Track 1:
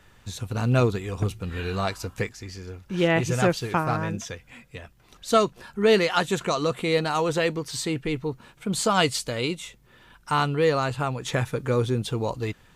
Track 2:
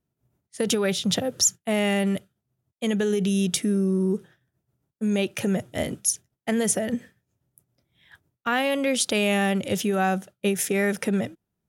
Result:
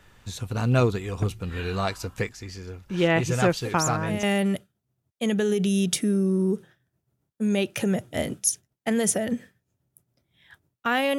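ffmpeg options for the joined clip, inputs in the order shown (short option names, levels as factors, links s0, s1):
-filter_complex "[1:a]asplit=2[s0][s1];[0:a]apad=whole_dur=11.18,atrim=end=11.18,atrim=end=4.232[s2];[s1]atrim=start=1.838:end=8.79[s3];[s0]atrim=start=1.26:end=1.84,asetpts=PTS-STARTPTS,volume=0.376,afade=t=in:d=0.004:c=hsin,afade=t=out:st=0.576:d=0.004:c=hsin,adelay=160965S[s4];[s2][s3]acrossfade=d=0.004:c1=hsin:c2=hsin[s5];[s5][s4]amix=inputs=2:normalize=0"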